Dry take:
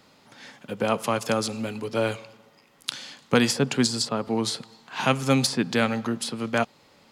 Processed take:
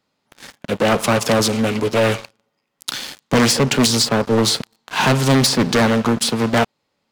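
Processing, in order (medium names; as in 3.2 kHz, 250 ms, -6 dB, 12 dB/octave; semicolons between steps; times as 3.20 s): waveshaping leveller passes 5; loudspeaker Doppler distortion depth 0.52 ms; trim -5 dB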